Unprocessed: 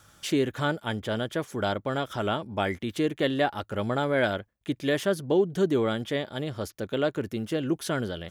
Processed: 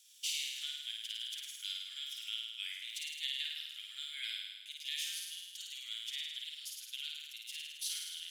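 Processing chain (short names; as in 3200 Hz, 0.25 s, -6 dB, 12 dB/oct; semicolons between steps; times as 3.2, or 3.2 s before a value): steep high-pass 2600 Hz 36 dB/oct; on a send: flutter echo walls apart 9.1 m, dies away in 1.3 s; on the sum: gain -2.5 dB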